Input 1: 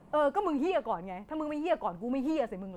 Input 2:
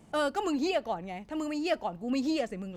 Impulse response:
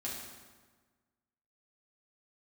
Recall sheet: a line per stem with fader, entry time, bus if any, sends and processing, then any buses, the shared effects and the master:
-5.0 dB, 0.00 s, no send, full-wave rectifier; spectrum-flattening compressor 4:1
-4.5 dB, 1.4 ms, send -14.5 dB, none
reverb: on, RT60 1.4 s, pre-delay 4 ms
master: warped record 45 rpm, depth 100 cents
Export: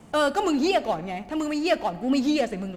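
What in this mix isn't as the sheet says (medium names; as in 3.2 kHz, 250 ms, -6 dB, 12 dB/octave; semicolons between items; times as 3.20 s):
stem 1 -5.0 dB -> -12.5 dB; stem 2 -4.5 dB -> +6.0 dB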